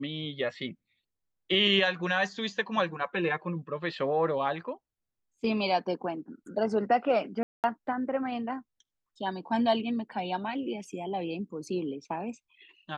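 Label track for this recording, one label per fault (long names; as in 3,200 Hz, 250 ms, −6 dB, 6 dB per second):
7.430000	7.640000	drop-out 208 ms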